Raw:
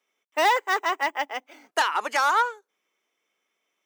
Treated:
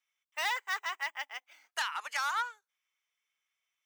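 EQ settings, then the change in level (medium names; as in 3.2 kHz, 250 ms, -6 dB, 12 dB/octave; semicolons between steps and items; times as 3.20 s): high-pass 1.4 kHz 12 dB/octave; -6.5 dB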